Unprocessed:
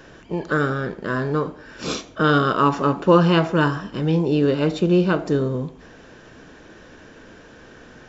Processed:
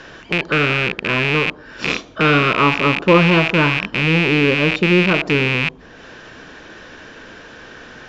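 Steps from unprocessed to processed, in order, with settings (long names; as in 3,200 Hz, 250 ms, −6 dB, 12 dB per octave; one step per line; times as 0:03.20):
loose part that buzzes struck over −35 dBFS, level −8 dBFS
low-pass filter 4,900 Hz 12 dB per octave
one half of a high-frequency compander encoder only
level +2 dB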